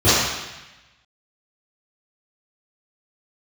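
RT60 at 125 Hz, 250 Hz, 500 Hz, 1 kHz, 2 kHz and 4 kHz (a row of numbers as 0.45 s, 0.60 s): 1.2 s, 1.0 s, 0.95 s, 1.1 s, 1.2 s, 1.1 s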